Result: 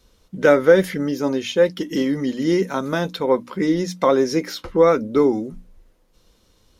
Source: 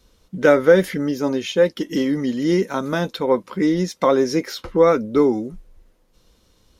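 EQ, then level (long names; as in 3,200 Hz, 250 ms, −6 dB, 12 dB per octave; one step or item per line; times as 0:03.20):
mains-hum notches 60/120/180/240/300 Hz
0.0 dB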